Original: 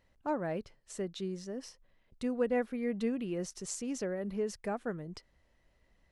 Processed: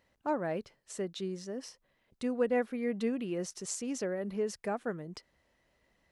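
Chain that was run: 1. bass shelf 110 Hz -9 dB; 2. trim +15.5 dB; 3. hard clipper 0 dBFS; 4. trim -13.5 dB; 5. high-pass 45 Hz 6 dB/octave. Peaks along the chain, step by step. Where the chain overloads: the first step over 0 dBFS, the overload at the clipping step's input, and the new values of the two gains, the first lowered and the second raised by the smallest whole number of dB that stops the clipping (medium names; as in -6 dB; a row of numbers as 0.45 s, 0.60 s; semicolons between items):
-20.0 dBFS, -4.5 dBFS, -4.5 dBFS, -18.0 dBFS, -18.5 dBFS; nothing clips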